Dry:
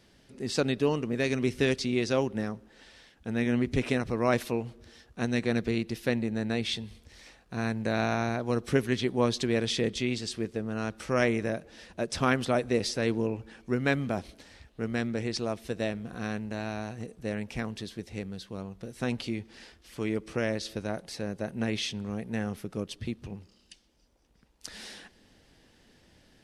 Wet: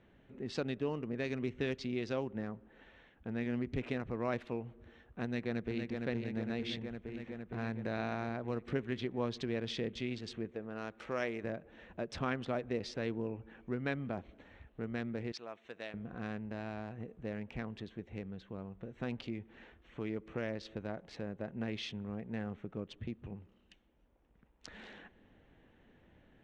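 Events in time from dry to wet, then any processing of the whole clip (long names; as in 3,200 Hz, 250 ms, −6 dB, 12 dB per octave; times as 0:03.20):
0:05.24–0:06.03: delay throw 460 ms, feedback 75%, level −5 dB
0:10.51–0:11.44: bass and treble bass −9 dB, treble +4 dB
0:15.32–0:15.94: high-pass filter 1,500 Hz 6 dB per octave
whole clip: adaptive Wiener filter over 9 samples; low-pass filter 4,100 Hz 12 dB per octave; downward compressor 1.5 to 1, threshold −42 dBFS; level −2.5 dB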